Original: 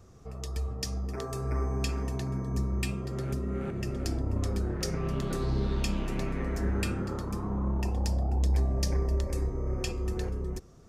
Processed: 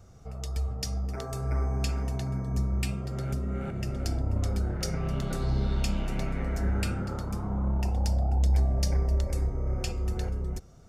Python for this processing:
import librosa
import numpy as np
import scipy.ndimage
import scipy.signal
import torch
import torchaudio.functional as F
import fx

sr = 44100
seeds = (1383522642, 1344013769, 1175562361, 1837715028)

y = x + 0.4 * np.pad(x, (int(1.4 * sr / 1000.0), 0))[:len(x)]